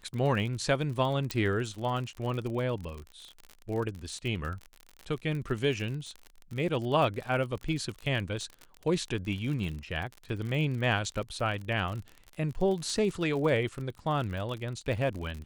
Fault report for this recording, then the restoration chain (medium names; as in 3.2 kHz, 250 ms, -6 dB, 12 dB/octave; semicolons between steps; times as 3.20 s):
crackle 49 per s -35 dBFS
1.31 s: pop -15 dBFS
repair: de-click